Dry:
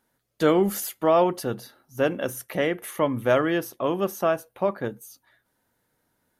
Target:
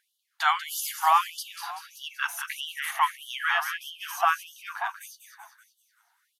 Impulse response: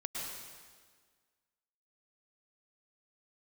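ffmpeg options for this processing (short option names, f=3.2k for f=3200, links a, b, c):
-filter_complex "[0:a]aemphasis=mode=reproduction:type=cd,asplit=7[a][b][c][d][e][f][g];[b]adelay=191,afreqshift=-34,volume=-8dB[h];[c]adelay=382,afreqshift=-68,volume=-13.5dB[i];[d]adelay=573,afreqshift=-102,volume=-19dB[j];[e]adelay=764,afreqshift=-136,volume=-24.5dB[k];[f]adelay=955,afreqshift=-170,volume=-30.1dB[l];[g]adelay=1146,afreqshift=-204,volume=-35.6dB[m];[a][h][i][j][k][l][m]amix=inputs=7:normalize=0,afftfilt=real='re*gte(b*sr/1024,660*pow(2900/660,0.5+0.5*sin(2*PI*1.6*pts/sr)))':imag='im*gte(b*sr/1024,660*pow(2900/660,0.5+0.5*sin(2*PI*1.6*pts/sr)))':win_size=1024:overlap=0.75,volume=7dB"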